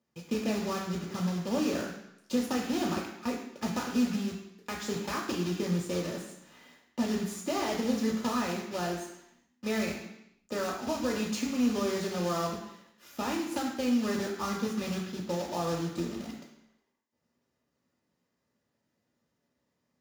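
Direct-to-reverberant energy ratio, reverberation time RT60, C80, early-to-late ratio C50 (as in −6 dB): −2.0 dB, 0.80 s, 7.0 dB, 5.0 dB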